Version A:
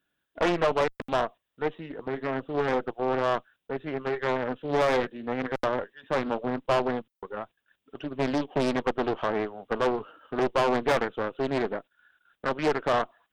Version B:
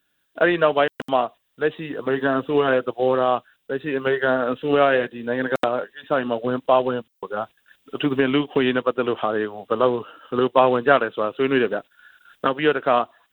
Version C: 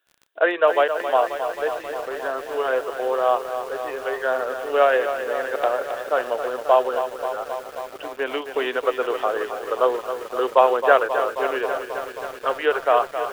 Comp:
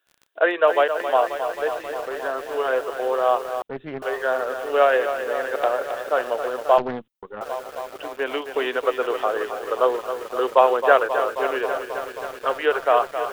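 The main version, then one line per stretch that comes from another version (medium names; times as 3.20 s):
C
3.62–4.02 s: from A
6.78–7.41 s: from A
not used: B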